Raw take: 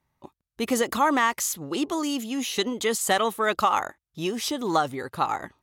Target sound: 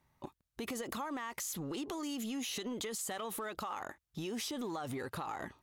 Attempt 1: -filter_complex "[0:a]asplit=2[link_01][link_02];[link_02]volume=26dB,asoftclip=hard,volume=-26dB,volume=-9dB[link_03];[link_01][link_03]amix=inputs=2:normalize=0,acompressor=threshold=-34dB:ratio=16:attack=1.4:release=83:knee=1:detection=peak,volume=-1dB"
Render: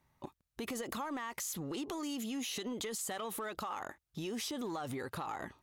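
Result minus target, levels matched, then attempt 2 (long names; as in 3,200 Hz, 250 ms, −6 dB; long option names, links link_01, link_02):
gain into a clipping stage and back: distortion −4 dB
-filter_complex "[0:a]asplit=2[link_01][link_02];[link_02]volume=36dB,asoftclip=hard,volume=-36dB,volume=-9dB[link_03];[link_01][link_03]amix=inputs=2:normalize=0,acompressor=threshold=-34dB:ratio=16:attack=1.4:release=83:knee=1:detection=peak,volume=-1dB"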